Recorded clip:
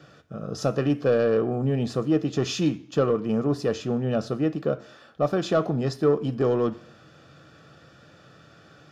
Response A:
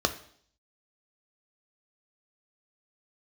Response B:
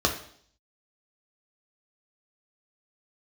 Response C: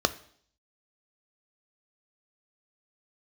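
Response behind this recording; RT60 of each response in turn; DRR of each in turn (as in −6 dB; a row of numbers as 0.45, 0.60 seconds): C; 0.60, 0.60, 0.60 seconds; 7.0, 1.0, 11.5 decibels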